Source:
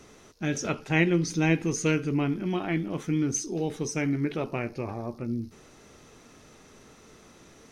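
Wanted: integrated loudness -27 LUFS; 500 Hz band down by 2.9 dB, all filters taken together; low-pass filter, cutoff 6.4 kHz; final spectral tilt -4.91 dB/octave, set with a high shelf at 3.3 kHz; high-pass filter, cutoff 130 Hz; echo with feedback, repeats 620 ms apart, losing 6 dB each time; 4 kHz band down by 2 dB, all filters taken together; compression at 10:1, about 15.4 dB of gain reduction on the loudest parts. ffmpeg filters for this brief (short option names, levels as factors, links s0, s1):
-af "highpass=130,lowpass=6400,equalizer=f=500:t=o:g=-4,highshelf=f=3300:g=7.5,equalizer=f=4000:t=o:g=-8.5,acompressor=threshold=0.02:ratio=10,aecho=1:1:620|1240|1860|2480|3100|3720:0.501|0.251|0.125|0.0626|0.0313|0.0157,volume=3.76"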